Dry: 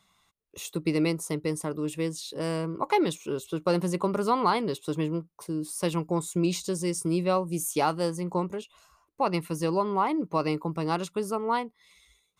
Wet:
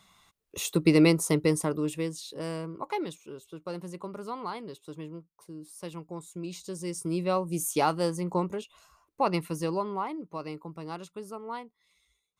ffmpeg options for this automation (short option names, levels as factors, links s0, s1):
-af "volume=7.5,afade=t=out:st=1.4:d=0.66:silence=0.398107,afade=t=out:st=2.06:d=1.27:silence=0.334965,afade=t=in:st=6.47:d=1.21:silence=0.251189,afade=t=out:st=9.28:d=0.94:silence=0.298538"